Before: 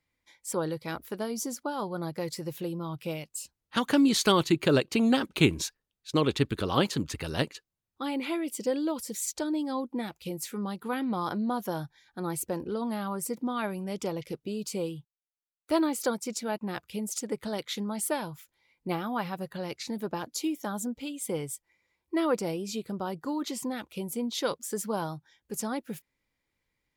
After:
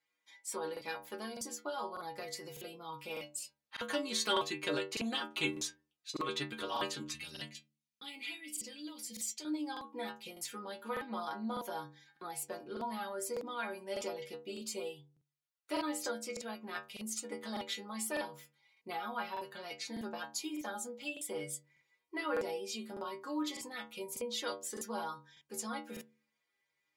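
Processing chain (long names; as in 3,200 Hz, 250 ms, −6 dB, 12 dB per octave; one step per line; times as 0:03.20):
meter weighting curve A
downward compressor 1.5 to 1, threshold −37 dBFS, peak gain reduction 6.5 dB
0:07.10–0:09.45: flat-topped bell 720 Hz −14 dB 2.6 octaves
stiff-string resonator 71 Hz, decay 0.51 s, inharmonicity 0.008
regular buffer underruns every 0.60 s, samples 2,048, repeat, from 0:00.72
level +8.5 dB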